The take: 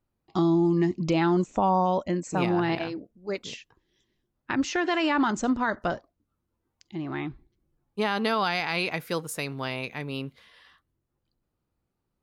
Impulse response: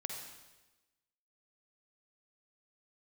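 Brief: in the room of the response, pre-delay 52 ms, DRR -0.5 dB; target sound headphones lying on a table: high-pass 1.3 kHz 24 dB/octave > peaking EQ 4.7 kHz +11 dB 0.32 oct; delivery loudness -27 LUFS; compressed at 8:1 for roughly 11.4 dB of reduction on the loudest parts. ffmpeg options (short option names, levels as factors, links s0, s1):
-filter_complex "[0:a]acompressor=threshold=0.0282:ratio=8,asplit=2[s0][s1];[1:a]atrim=start_sample=2205,adelay=52[s2];[s1][s2]afir=irnorm=-1:irlink=0,volume=1.12[s3];[s0][s3]amix=inputs=2:normalize=0,highpass=f=1300:w=0.5412,highpass=f=1300:w=1.3066,equalizer=f=4700:t=o:w=0.32:g=11,volume=3.16"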